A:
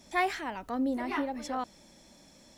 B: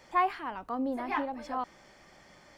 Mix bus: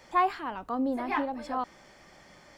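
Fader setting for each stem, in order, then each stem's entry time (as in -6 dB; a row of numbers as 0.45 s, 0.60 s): -15.0 dB, +2.0 dB; 0.00 s, 0.00 s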